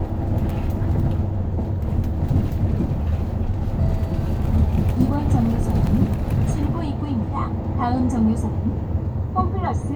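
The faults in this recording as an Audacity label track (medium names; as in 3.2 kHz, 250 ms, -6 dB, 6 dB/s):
5.870000	5.870000	dropout 2.1 ms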